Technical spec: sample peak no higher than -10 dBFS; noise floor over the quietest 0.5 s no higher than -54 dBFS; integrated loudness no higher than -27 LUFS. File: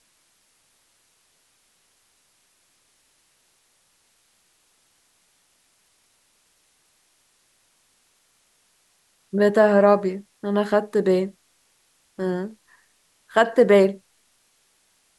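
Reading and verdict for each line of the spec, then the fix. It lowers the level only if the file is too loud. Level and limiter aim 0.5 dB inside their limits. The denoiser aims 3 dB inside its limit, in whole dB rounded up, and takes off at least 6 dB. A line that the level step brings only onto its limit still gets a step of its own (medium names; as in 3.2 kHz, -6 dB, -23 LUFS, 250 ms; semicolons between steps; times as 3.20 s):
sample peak -4.5 dBFS: fail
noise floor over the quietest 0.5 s -65 dBFS: pass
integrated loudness -20.5 LUFS: fail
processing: trim -7 dB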